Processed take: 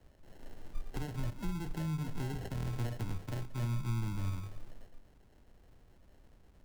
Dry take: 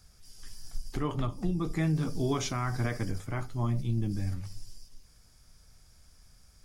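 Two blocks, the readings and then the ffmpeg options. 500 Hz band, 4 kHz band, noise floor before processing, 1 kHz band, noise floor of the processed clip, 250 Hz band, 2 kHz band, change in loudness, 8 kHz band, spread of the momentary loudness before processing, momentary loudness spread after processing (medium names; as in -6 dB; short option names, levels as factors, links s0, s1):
-11.0 dB, -8.5 dB, -60 dBFS, -9.0 dB, -63 dBFS, -8.5 dB, -8.5 dB, -6.5 dB, -10.0 dB, 16 LU, 17 LU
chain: -filter_complex "[0:a]acrusher=samples=37:mix=1:aa=0.000001,acrossover=split=150[s0][s1];[s1]acompressor=threshold=0.0141:ratio=10[s2];[s0][s2]amix=inputs=2:normalize=0,volume=0.708"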